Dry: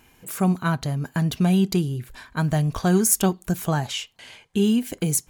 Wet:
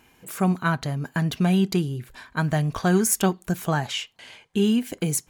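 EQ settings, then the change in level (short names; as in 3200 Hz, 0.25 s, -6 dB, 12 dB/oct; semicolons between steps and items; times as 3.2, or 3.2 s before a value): dynamic EQ 1800 Hz, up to +4 dB, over -39 dBFS, Q 1.2; low shelf 81 Hz -8.5 dB; high shelf 6100 Hz -4.5 dB; 0.0 dB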